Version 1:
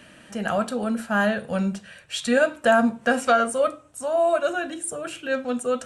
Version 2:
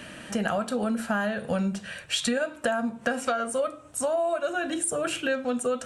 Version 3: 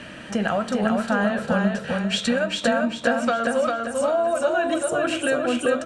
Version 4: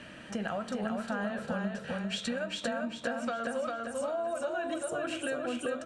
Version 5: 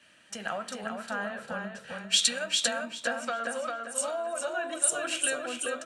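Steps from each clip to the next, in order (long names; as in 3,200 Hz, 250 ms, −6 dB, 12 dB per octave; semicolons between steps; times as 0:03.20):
downward compressor 12 to 1, threshold −30 dBFS, peak gain reduction 17 dB; level +6.5 dB
high-frequency loss of the air 67 metres; on a send: repeating echo 398 ms, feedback 42%, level −3 dB; on the sum: level +4 dB
downward compressor 2 to 1, threshold −23 dBFS, peak gain reduction 5 dB; level −9 dB
spectral tilt +3.5 dB per octave; multiband upward and downward expander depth 100%; level +2.5 dB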